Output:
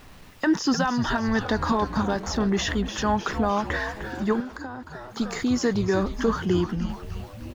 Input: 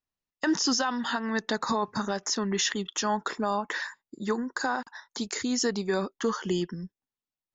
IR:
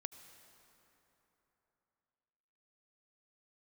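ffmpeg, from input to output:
-filter_complex "[0:a]aeval=exprs='val(0)+0.5*0.00891*sgn(val(0))':c=same,bass=f=250:g=4,treble=f=4k:g=-6,asplit=9[a][b][c][d][e][f][g][h][i];[b]adelay=304,afreqshift=-140,volume=-9.5dB[j];[c]adelay=608,afreqshift=-280,volume=-13.8dB[k];[d]adelay=912,afreqshift=-420,volume=-18.1dB[l];[e]adelay=1216,afreqshift=-560,volume=-22.4dB[m];[f]adelay=1520,afreqshift=-700,volume=-26.7dB[n];[g]adelay=1824,afreqshift=-840,volume=-31dB[o];[h]adelay=2128,afreqshift=-980,volume=-35.3dB[p];[i]adelay=2432,afreqshift=-1120,volume=-39.6dB[q];[a][j][k][l][m][n][o][p][q]amix=inputs=9:normalize=0,asettb=1/sr,asplit=3[r][s][t];[r]atrim=end=4.404[u];[s]atrim=start=4.4:end=5.17,asetpts=PTS-STARTPTS,afade=t=in:d=0.004:c=qsin,afade=t=out:st=0.766:d=0.004:c=qsin,acrossover=split=190|410[v][w][x];[v]acompressor=threshold=-53dB:ratio=4[y];[w]acompressor=threshold=-41dB:ratio=4[z];[x]acompressor=threshold=-42dB:ratio=4[aa];[y][z][aa]amix=inputs=3:normalize=0[ab];[t]atrim=start=5.166[ac];[u][ab]acrossfade=d=0.004:c1=hsin:c2=qsin[ad];[ad][ac]acrossfade=d=0.004:c1=qsin:c2=hsin,highshelf=f=4.2k:g=-5.5,volume=3dB"

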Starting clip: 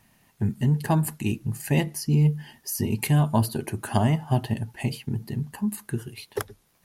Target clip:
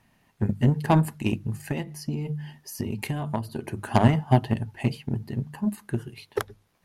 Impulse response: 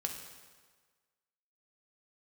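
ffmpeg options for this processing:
-filter_complex "[0:a]highshelf=f=5.7k:g=-11,bandreject=f=50:t=h:w=6,bandreject=f=100:t=h:w=6,bandreject=f=150:t=h:w=6,bandreject=f=200:t=h:w=6,asettb=1/sr,asplit=3[a][b][c];[a]atrim=end=1.684[d];[b]atrim=start=1.68:end=3.77,asetpts=PTS-STARTPTS,afade=t=in:d=0.004:c=qsin,afade=t=out:st=2.086:d=0.004:c=qsin,acompressor=threshold=-26dB:ratio=10[e];[c]atrim=start=3.766[f];[d][e]acrossfade=d=0.004:c1=hsin:c2=qsin[g];[g][f]acrossfade=d=0.004:c1=qsin:c2=hsin,aeval=exprs='0.447*(cos(1*acos(clip(val(0)/0.447,-1,1)))-cos(1*PI/2))+0.0398*(cos(5*acos(clip(val(0)/0.447,-1,1)))-cos(5*PI/2))+0.0562*(cos(7*acos(clip(val(0)/0.447,-1,1)))-cos(7*PI/2))':c=same,volume=4dB"

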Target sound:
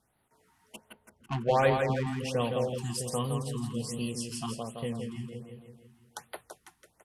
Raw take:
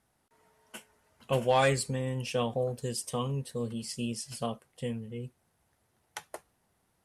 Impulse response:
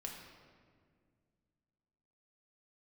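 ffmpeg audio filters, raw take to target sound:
-filter_complex "[0:a]asettb=1/sr,asplit=3[a][b][c];[a]atrim=end=0.764[d];[b]atrim=start=0.76:end=2.07,asetpts=PTS-STARTPTS,afade=t=in:d=0.004:c=qsin,afade=t=out:st=1.306:d=0.004:c=qsin,adynamicsmooth=sensitivity=2.5:basefreq=730[e];[c]atrim=start=2.066[f];[d][e]acrossfade=d=0.004:c1=hsin:c2=qsin[g];[g][f]acrossfade=d=0.004:c1=qsin:c2=hsin,aecho=1:1:166|332|498|664|830|996|1162|1328:0.562|0.321|0.183|0.104|0.0594|0.0338|0.0193|0.011,afftfilt=real='re*(1-between(b*sr/1024,480*pow(6800/480,0.5+0.5*sin(2*PI*1.3*pts/sr))/1.41,480*pow(6800/480,0.5+0.5*sin(2*PI*1.3*pts/sr))*1.41))':imag='im*(1-between(b*sr/1024,480*pow(6800/480,0.5+0.5*sin(2*PI*1.3*pts/sr))/1.41,480*pow(6800/480,0.5+0.5*sin(2*PI*1.3*pts/sr))*1.41))':win_size=1024:overlap=0.75"

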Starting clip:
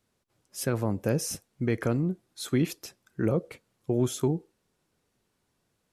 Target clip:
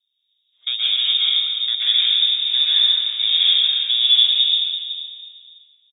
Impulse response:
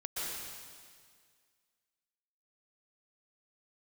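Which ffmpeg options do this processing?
-filter_complex "[0:a]asettb=1/sr,asplit=3[a][b][c];[a]atrim=end=2.094[d];[b]atrim=start=2.09:end=4.22,asetpts=PTS-STARTPTS,afade=t=in:d=0.004:c=qsin,afade=t=out:st=2.126:d=0.004:c=qsin,aeval=exprs='val(0)+0.5*0.0316*sgn(val(0))':c=same[e];[c]atrim=start=4.216[f];[d][e]acrossfade=d=0.004:c1=hsin:c2=qsin[g];[g][f]acrossfade=d=0.004:c1=qsin:c2=hsin,adynamicsmooth=sensitivity=1.5:basefreq=630,asplit=2[h][i];[i]adelay=14,volume=-10.5dB[j];[h][j]amix=inputs=2:normalize=0[k];[1:a]atrim=start_sample=2205[l];[k][l]afir=irnorm=-1:irlink=0,lowpass=f=3.2k:t=q:w=0.5098,lowpass=f=3.2k:t=q:w=0.6013,lowpass=f=3.2k:t=q:w=0.9,lowpass=f=3.2k:t=q:w=2.563,afreqshift=-3800,crystalizer=i=2.5:c=0,volume=3dB"

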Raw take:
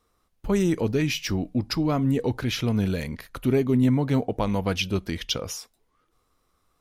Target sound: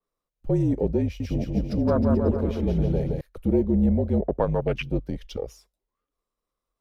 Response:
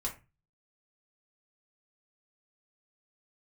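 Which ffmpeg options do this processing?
-filter_complex "[0:a]aeval=exprs='if(lt(val(0),0),0.708*val(0),val(0))':c=same,afwtdn=0.0398,equalizer=f=580:t=o:w=0.36:g=9,afreqshift=-47,asettb=1/sr,asplit=3[a][b][c];[a]atrim=end=1.034[d];[b]atrim=start=1.03:end=3.21,asetpts=PTS-STARTPTS,afade=t=in:d=0.004:c=qsin,afade=t=out:st=2.176:d=0.004:c=qsin,aecho=1:1:170|314.5|437.3|541.7|630.5:0.631|0.398|0.251|0.158|0.1,atrim=end_sample=96138[e];[c]atrim=start=3.206[f];[d][e]acrossfade=d=0.004:c1=hsin:c2=qsin[g];[g][f]acrossfade=d=0.004:c1=qsin:c2=hsin,adynamicequalizer=threshold=0.00447:dfrequency=3400:dqfactor=0.7:tfrequency=3400:tqfactor=0.7:attack=5:release=100:ratio=0.375:range=2.5:mode=cutabove:tftype=highshelf,volume=1dB"

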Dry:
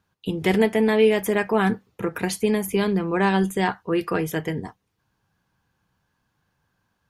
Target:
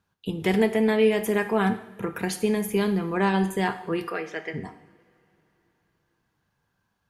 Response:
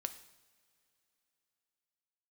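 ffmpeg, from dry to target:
-filter_complex "[0:a]asplit=3[a][b][c];[a]afade=t=out:st=4.09:d=0.02[d];[b]highpass=480,equalizer=f=970:t=q:w=4:g=-8,equalizer=f=2.1k:t=q:w=4:g=6,equalizer=f=3.3k:t=q:w=4:g=-5,lowpass=f=5.2k:w=0.5412,lowpass=f=5.2k:w=1.3066,afade=t=in:st=4.09:d=0.02,afade=t=out:st=4.53:d=0.02[e];[c]afade=t=in:st=4.53:d=0.02[f];[d][e][f]amix=inputs=3:normalize=0[g];[1:a]atrim=start_sample=2205[h];[g][h]afir=irnorm=-1:irlink=0,volume=-1.5dB"

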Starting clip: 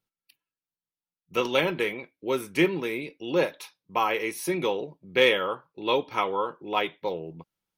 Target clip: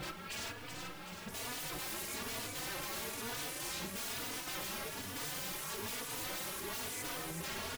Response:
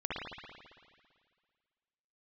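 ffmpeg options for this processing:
-filter_complex "[0:a]aeval=exprs='val(0)+0.5*0.0794*sgn(val(0))':c=same,acrossover=split=3800[a][b];[b]acompressor=threshold=-40dB:ratio=4:attack=1:release=60[c];[a][c]amix=inputs=2:normalize=0,agate=range=-12dB:threshold=-32dB:ratio=16:detection=peak,highshelf=f=3.7k:g=-10,alimiter=limit=-16.5dB:level=0:latency=1:release=18,aeval=exprs='0.0106*(abs(mod(val(0)/0.0106+3,4)-2)-1)':c=same,asplit=2[d][e];[e]aecho=0:1:379|758|1137|1516|1895|2274|2653|3032:0.501|0.296|0.174|0.103|0.0607|0.0358|0.0211|0.0125[f];[d][f]amix=inputs=2:normalize=0,asplit=2[g][h];[h]adelay=3.4,afreqshift=1.1[i];[g][i]amix=inputs=2:normalize=1,volume=5dB"

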